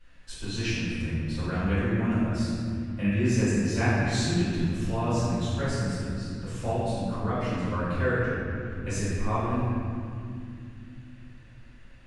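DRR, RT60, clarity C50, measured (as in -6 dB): -14.0 dB, 2.4 s, -3.5 dB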